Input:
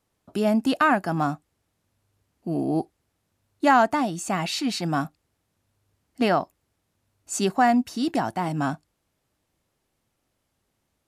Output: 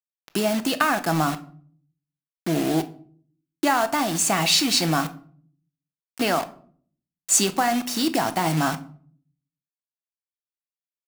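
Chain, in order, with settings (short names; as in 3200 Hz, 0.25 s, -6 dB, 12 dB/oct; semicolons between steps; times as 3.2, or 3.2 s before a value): compressor 8:1, threshold -24 dBFS, peak gain reduction 11 dB; high shelf 2300 Hz +7.5 dB; bit-crush 6-bit; low shelf 140 Hz -8.5 dB; shoebox room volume 530 m³, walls furnished, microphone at 0.69 m; gain +5.5 dB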